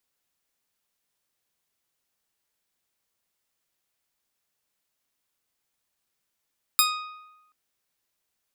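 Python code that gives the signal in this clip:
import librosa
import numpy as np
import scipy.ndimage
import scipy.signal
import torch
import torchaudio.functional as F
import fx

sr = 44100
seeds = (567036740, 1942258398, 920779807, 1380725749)

y = fx.pluck(sr, length_s=0.73, note=87, decay_s=1.03, pick=0.39, brightness='bright')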